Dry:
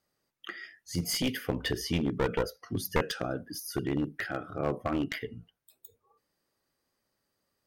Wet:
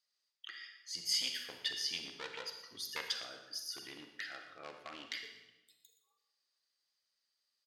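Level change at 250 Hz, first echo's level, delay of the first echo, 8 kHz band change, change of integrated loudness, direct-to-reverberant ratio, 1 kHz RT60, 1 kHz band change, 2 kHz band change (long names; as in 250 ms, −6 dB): −26.0 dB, −14.0 dB, 120 ms, −3.5 dB, −7.0 dB, 5.0 dB, 0.95 s, −14.0 dB, −7.0 dB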